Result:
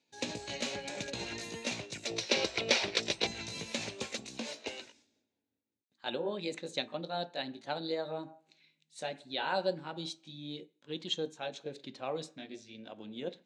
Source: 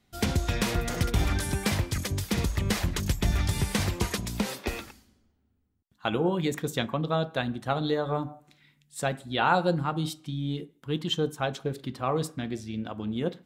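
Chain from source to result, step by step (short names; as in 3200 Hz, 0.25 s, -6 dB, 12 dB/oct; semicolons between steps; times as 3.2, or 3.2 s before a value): gliding pitch shift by +3 st ending unshifted; speaker cabinet 240–7700 Hz, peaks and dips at 570 Hz +5 dB, 1200 Hz -8 dB, 2500 Hz +6 dB, 3900 Hz +8 dB, 6500 Hz +6 dB; spectral gain 2.07–3.27, 310–6100 Hz +10 dB; gain -8.5 dB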